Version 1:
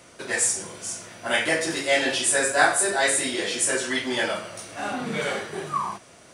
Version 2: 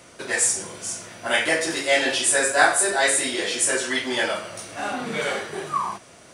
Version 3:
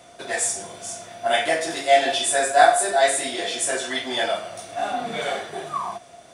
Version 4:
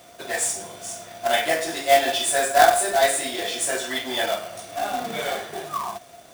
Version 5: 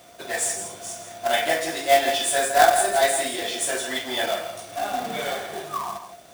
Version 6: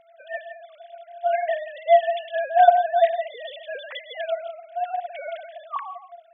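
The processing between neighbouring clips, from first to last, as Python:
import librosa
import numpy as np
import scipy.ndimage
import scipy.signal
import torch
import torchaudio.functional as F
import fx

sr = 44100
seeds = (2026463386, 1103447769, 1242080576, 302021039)

y1 = fx.dynamic_eq(x, sr, hz=150.0, q=0.86, threshold_db=-42.0, ratio=4.0, max_db=-5)
y1 = y1 * 10.0 ** (2.0 / 20.0)
y2 = fx.small_body(y1, sr, hz=(700.0, 3500.0), ring_ms=65, db=17)
y2 = y2 * 10.0 ** (-3.5 / 20.0)
y3 = fx.quant_companded(y2, sr, bits=4)
y3 = y3 * 10.0 ** (-1.0 / 20.0)
y4 = y3 + 10.0 ** (-10.0 / 20.0) * np.pad(y3, (int(164 * sr / 1000.0), 0))[:len(y3)]
y4 = y4 * 10.0 ** (-1.0 / 20.0)
y5 = fx.sine_speech(y4, sr)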